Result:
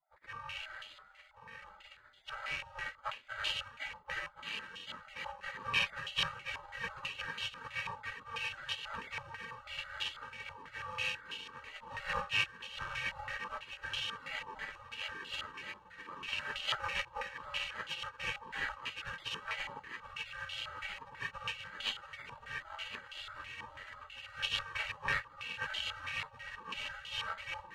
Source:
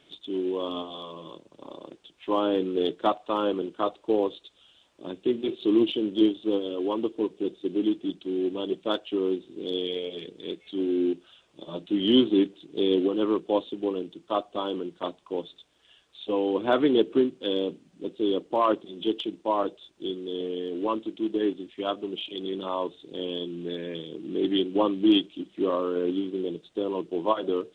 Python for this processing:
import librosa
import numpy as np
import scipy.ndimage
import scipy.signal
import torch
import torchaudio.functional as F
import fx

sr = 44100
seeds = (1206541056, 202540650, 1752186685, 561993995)

p1 = fx.bit_reversed(x, sr, seeds[0], block=64)
p2 = p1 + fx.echo_thinned(p1, sr, ms=1072, feedback_pct=76, hz=1200.0, wet_db=-6, dry=0)
p3 = fx.spec_gate(p2, sr, threshold_db=-30, keep='weak')
p4 = fx.filter_held_lowpass(p3, sr, hz=6.1, low_hz=970.0, high_hz=3100.0)
y = p4 * librosa.db_to_amplitude(8.5)